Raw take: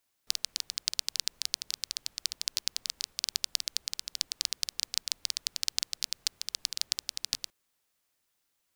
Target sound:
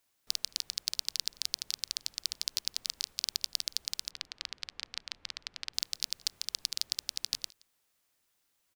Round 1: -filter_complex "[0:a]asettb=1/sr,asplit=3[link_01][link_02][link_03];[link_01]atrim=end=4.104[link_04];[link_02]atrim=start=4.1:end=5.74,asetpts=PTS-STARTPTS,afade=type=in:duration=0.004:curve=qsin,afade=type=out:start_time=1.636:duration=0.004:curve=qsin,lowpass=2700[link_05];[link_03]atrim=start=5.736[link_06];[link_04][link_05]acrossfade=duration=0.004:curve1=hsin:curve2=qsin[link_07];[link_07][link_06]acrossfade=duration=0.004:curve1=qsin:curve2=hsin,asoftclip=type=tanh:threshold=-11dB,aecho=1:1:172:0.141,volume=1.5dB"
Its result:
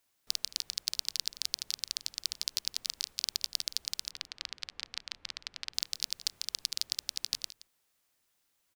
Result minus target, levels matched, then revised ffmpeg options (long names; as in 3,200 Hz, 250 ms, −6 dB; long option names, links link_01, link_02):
echo-to-direct +9 dB
-filter_complex "[0:a]asettb=1/sr,asplit=3[link_01][link_02][link_03];[link_01]atrim=end=4.104[link_04];[link_02]atrim=start=4.1:end=5.74,asetpts=PTS-STARTPTS,afade=type=in:duration=0.004:curve=qsin,afade=type=out:start_time=1.636:duration=0.004:curve=qsin,lowpass=2700[link_05];[link_03]atrim=start=5.736[link_06];[link_04][link_05]acrossfade=duration=0.004:curve1=hsin:curve2=qsin[link_07];[link_07][link_06]acrossfade=duration=0.004:curve1=qsin:curve2=hsin,asoftclip=type=tanh:threshold=-11dB,aecho=1:1:172:0.0501,volume=1.5dB"